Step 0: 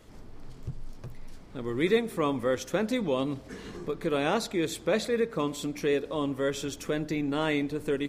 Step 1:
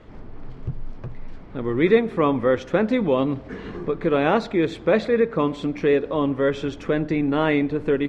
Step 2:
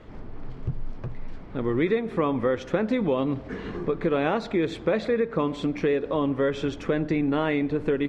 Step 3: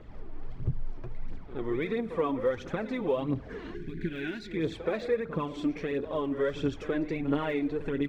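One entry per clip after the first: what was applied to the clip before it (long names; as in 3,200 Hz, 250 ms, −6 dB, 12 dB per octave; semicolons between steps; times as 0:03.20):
low-pass filter 2,400 Hz 12 dB per octave; level +8 dB
downward compressor 6 to 1, threshold −20 dBFS, peak gain reduction 9.5 dB
phase shifter 1.5 Hz, delay 3.4 ms, feedback 56%; gain on a spectral selection 0:03.74–0:04.57, 410–1,400 Hz −21 dB; echo ahead of the sound 74 ms −13 dB; level −7.5 dB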